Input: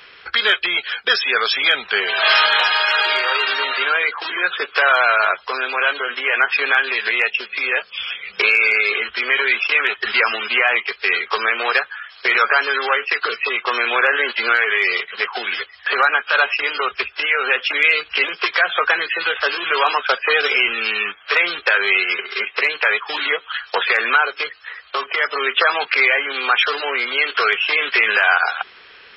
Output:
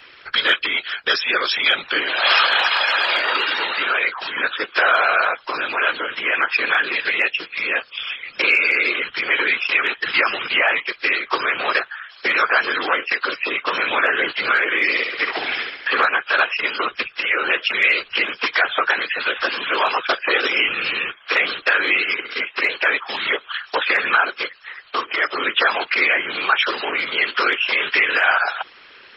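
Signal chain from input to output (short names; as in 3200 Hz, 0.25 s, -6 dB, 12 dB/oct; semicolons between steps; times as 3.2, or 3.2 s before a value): 14.82–16.05 flutter echo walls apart 11.7 m, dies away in 0.88 s; whisperiser; gain -1.5 dB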